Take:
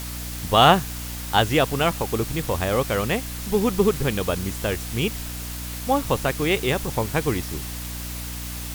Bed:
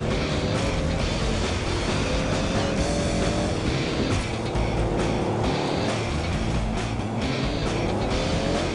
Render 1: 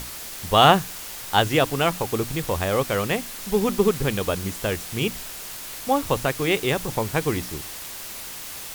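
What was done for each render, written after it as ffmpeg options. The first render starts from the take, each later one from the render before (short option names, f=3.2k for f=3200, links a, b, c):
-af "bandreject=f=60:t=h:w=6,bandreject=f=120:t=h:w=6,bandreject=f=180:t=h:w=6,bandreject=f=240:t=h:w=6,bandreject=f=300:t=h:w=6"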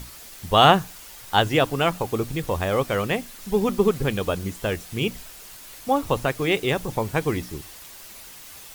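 -af "afftdn=nr=8:nf=-36"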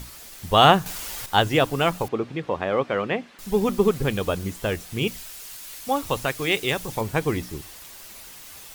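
-filter_complex "[0:a]asettb=1/sr,asplit=3[a][b][c];[a]atrim=end=2.084[d];[b]atrim=start=2.08:end=3.39,asetpts=PTS-STARTPTS,afade=t=in:d=0.004:c=qsin,afade=t=out:st=1.306:d=0.004:c=qsin,highpass=180,lowpass=2.8k[e];[c]atrim=start=3.386[f];[d][e]acrossfade=d=0.004:c1=hsin:c2=qsin[g];[g][f]acrossfade=d=0.004:c1=qsin:c2=hsin,asettb=1/sr,asplit=3[h][i][j];[h]atrim=end=5.074[k];[i]atrim=start=5.07:end=7.01,asetpts=PTS-STARTPTS,afade=t=in:d=0.004:c=qsin,afade=t=out:st=1.936:d=0.004:c=qsin,tiltshelf=f=1.5k:g=-4[l];[j]atrim=start=7.006[m];[k][l]acrossfade=d=0.004:c1=hsin:c2=qsin[n];[n][m]acrossfade=d=0.004:c1=qsin:c2=hsin,asplit=3[o][p][q];[o]atrim=end=0.862[r];[p]atrim=start=0.858:end=1.262,asetpts=PTS-STARTPTS,volume=9dB[s];[q]atrim=start=1.258[t];[r][s]acrossfade=d=0.004:c1=hsin:c2=hsin[u];[u][t]acrossfade=d=0.004:c1=hsin:c2=hsin"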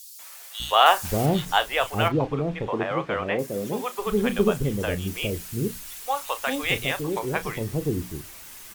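-filter_complex "[0:a]asplit=2[a][b];[b]adelay=34,volume=-12.5dB[c];[a][c]amix=inputs=2:normalize=0,acrossover=split=540|4100[d][e][f];[e]adelay=190[g];[d]adelay=600[h];[h][g][f]amix=inputs=3:normalize=0"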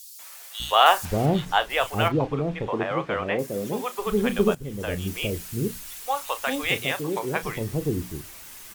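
-filter_complex "[0:a]asettb=1/sr,asplit=3[a][b][c];[a]atrim=end=1.054[d];[b]atrim=start=1.05:end=1.7,asetpts=PTS-STARTPTS,afade=t=in:d=0.004:c=qsin,afade=t=out:st=0.646:d=0.004:c=qsin,aemphasis=mode=reproduction:type=cd[e];[c]atrim=start=1.696[f];[d][e]acrossfade=d=0.004:c1=hsin:c2=qsin[g];[g][f]acrossfade=d=0.004:c1=qsin:c2=hsin,asettb=1/sr,asplit=3[h][i][j];[h]atrim=end=6.694[k];[i]atrim=start=6.69:end=7.43,asetpts=PTS-STARTPTS,afade=t=in:d=0.004:c=qsin,afade=t=out:st=0.736:d=0.004:c=qsin,highpass=120[l];[j]atrim=start=7.426[m];[k][l]acrossfade=d=0.004:c1=hsin:c2=qsin[n];[n][m]acrossfade=d=0.004:c1=qsin:c2=hsin,asplit=2[o][p];[o]atrim=end=4.55,asetpts=PTS-STARTPTS,afade=t=out:st=4.546:d=0.004:c=hsin:silence=0.141254[q];[p]atrim=start=4.55,asetpts=PTS-STARTPTS,afade=t=in:d=0.47:silence=0.141254[r];[q][r]concat=n=2:v=0:a=1"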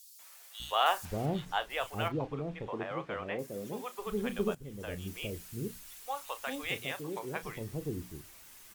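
-af "volume=-11dB"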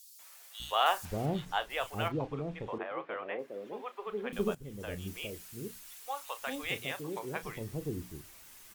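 -filter_complex "[0:a]asettb=1/sr,asplit=3[a][b][c];[a]atrim=end=2.784[d];[b]atrim=start=2.78:end=4.33,asetpts=PTS-STARTPTS,afade=t=in:d=0.004:c=qsin,afade=t=out:st=1.546:d=0.004:c=qsin,acrossover=split=270 3400:gain=0.0708 1 0.0891[e][f][g];[e][f][g]amix=inputs=3:normalize=0[h];[c]atrim=start=4.326[i];[d][h]acrossfade=d=0.004:c1=hsin:c2=qsin[j];[j][i]acrossfade=d=0.004:c1=qsin:c2=hsin,asettb=1/sr,asplit=3[k][l][m];[k]atrim=end=5.224[n];[l]atrim=start=5.22:end=6.42,asetpts=PTS-STARTPTS,afade=t=in:d=0.004:c=qsin,afade=t=out:st=1.196:d=0.004:c=qsin,lowshelf=f=260:g=-8.5[o];[m]atrim=start=6.416[p];[n][o]acrossfade=d=0.004:c1=hsin:c2=qsin[q];[q][p]acrossfade=d=0.004:c1=qsin:c2=hsin"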